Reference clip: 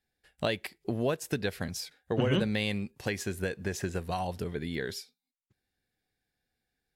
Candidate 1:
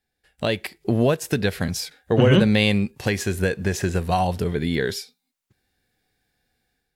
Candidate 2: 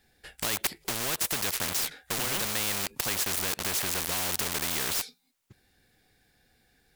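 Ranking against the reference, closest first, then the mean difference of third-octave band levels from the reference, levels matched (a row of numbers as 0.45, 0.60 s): 1, 2; 1.5, 15.0 dB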